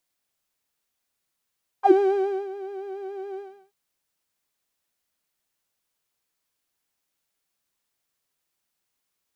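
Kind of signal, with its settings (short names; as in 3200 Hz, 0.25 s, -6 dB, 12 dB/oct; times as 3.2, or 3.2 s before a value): synth patch with vibrato G5, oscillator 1 saw, sub -8.5 dB, noise -29 dB, filter bandpass, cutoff 140 Hz, Q 8.5, filter envelope 3 oct, filter decay 0.08 s, filter sustain 40%, attack 65 ms, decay 0.59 s, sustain -16 dB, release 0.33 s, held 1.56 s, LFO 7.1 Hz, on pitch 60 cents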